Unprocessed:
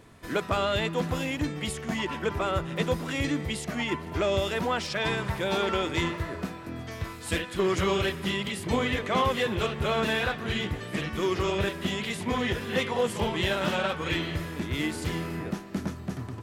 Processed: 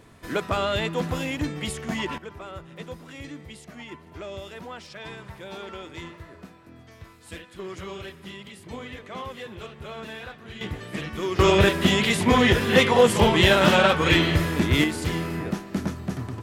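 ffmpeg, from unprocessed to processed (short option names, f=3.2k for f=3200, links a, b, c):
-af "asetnsamples=n=441:p=0,asendcmd='2.18 volume volume -11dB;10.61 volume volume -1dB;11.39 volume volume 10dB;14.84 volume volume 4dB',volume=1.5dB"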